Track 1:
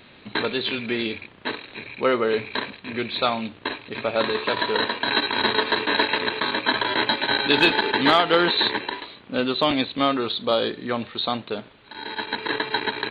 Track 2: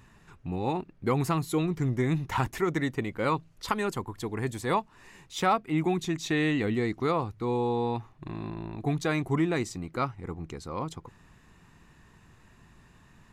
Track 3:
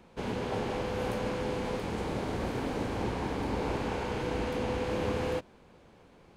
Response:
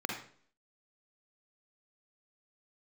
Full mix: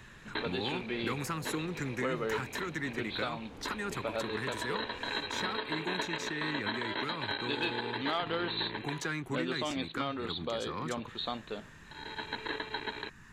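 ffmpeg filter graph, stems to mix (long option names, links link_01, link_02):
-filter_complex "[0:a]volume=-10.5dB[link_01];[1:a]equalizer=frequency=630:width_type=o:width=0.67:gain=-10,equalizer=frequency=1600:width_type=o:width=0.67:gain=9,equalizer=frequency=6300:width_type=o:width=0.67:gain=4,acrossover=split=130|300|1900[link_02][link_03][link_04][link_05];[link_02]acompressor=threshold=-54dB:ratio=4[link_06];[link_03]acompressor=threshold=-45dB:ratio=4[link_07];[link_04]acompressor=threshold=-39dB:ratio=4[link_08];[link_05]acompressor=threshold=-43dB:ratio=4[link_09];[link_06][link_07][link_08][link_09]amix=inputs=4:normalize=0,asoftclip=type=tanh:threshold=-26dB,volume=2dB[link_10];[2:a]acompressor=threshold=-50dB:ratio=1.5,adelay=200,volume=-9dB[link_11];[link_01][link_10][link_11]amix=inputs=3:normalize=0,alimiter=limit=-22.5dB:level=0:latency=1:release=341"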